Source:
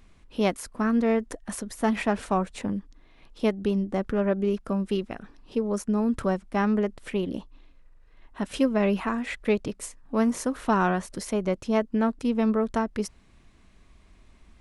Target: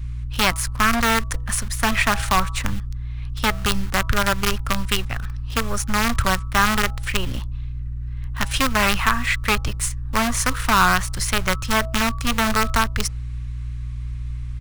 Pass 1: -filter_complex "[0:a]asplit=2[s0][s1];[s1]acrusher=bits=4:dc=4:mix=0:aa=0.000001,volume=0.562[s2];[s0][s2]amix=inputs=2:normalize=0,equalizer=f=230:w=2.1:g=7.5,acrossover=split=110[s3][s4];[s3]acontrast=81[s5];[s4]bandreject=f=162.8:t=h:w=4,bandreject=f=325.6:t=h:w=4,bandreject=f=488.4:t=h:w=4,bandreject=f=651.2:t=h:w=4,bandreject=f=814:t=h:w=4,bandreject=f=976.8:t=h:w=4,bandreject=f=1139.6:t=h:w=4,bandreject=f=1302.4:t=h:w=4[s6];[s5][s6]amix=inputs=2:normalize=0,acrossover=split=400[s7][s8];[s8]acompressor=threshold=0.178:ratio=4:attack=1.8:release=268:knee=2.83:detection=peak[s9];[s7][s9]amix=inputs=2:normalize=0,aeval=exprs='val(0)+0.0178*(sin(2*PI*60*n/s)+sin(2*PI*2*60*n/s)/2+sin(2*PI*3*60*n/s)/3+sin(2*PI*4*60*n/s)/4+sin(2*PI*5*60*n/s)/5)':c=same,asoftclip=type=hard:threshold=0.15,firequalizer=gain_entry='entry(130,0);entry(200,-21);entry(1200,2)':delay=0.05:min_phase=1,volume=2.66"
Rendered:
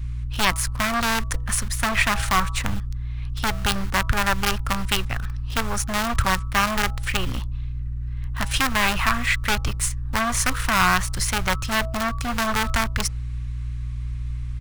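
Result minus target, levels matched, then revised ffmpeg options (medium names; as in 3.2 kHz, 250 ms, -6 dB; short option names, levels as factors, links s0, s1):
hard clipper: distortion +9 dB
-filter_complex "[0:a]asplit=2[s0][s1];[s1]acrusher=bits=4:dc=4:mix=0:aa=0.000001,volume=0.562[s2];[s0][s2]amix=inputs=2:normalize=0,equalizer=f=230:w=2.1:g=7.5,acrossover=split=110[s3][s4];[s3]acontrast=81[s5];[s4]bandreject=f=162.8:t=h:w=4,bandreject=f=325.6:t=h:w=4,bandreject=f=488.4:t=h:w=4,bandreject=f=651.2:t=h:w=4,bandreject=f=814:t=h:w=4,bandreject=f=976.8:t=h:w=4,bandreject=f=1139.6:t=h:w=4,bandreject=f=1302.4:t=h:w=4[s6];[s5][s6]amix=inputs=2:normalize=0,acrossover=split=400[s7][s8];[s8]acompressor=threshold=0.178:ratio=4:attack=1.8:release=268:knee=2.83:detection=peak[s9];[s7][s9]amix=inputs=2:normalize=0,aeval=exprs='val(0)+0.0178*(sin(2*PI*60*n/s)+sin(2*PI*2*60*n/s)/2+sin(2*PI*3*60*n/s)/3+sin(2*PI*4*60*n/s)/4+sin(2*PI*5*60*n/s)/5)':c=same,asoftclip=type=hard:threshold=0.316,firequalizer=gain_entry='entry(130,0);entry(200,-21);entry(1200,2)':delay=0.05:min_phase=1,volume=2.66"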